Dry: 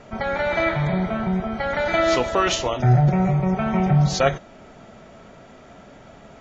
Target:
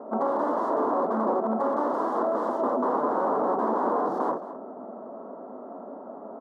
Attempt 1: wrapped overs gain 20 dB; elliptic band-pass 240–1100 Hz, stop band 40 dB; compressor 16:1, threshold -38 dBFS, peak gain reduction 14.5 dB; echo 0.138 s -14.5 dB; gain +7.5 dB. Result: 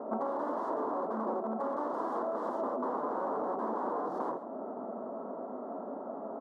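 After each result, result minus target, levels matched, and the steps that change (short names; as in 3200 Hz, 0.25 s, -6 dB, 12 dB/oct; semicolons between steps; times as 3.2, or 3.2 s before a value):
compressor: peak gain reduction +9 dB; echo 79 ms early
change: compressor 16:1, threshold -28.5 dBFS, peak gain reduction 5.5 dB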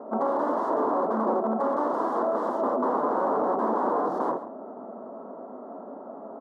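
echo 79 ms early
change: echo 0.217 s -14.5 dB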